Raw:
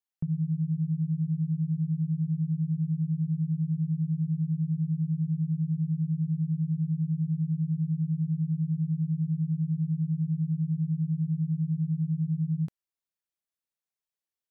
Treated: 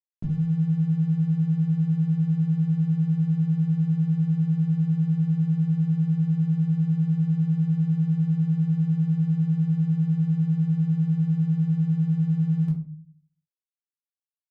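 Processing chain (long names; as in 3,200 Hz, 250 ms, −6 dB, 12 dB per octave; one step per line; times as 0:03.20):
dead-zone distortion −52.5 dBFS
rectangular room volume 310 cubic metres, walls furnished, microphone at 2.9 metres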